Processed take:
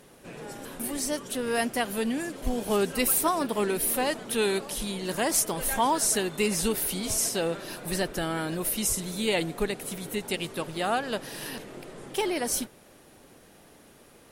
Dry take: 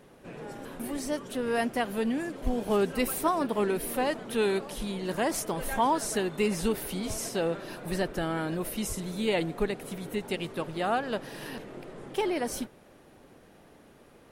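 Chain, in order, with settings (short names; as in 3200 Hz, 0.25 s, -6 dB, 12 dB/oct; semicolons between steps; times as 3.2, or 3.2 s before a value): bell 11000 Hz +10.5 dB 2.6 oct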